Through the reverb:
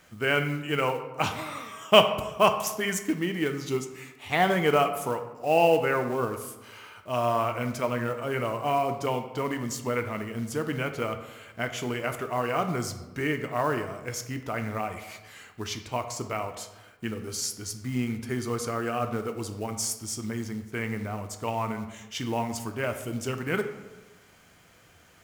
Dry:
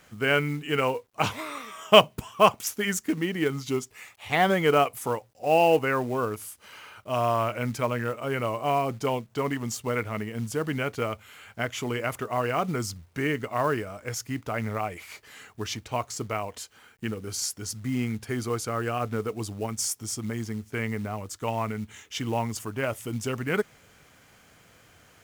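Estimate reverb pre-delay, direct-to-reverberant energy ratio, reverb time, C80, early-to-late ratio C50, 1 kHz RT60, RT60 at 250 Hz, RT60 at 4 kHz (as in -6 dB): 3 ms, 6.5 dB, 1.1 s, 11.5 dB, 9.5 dB, 1.1 s, 1.2 s, 0.65 s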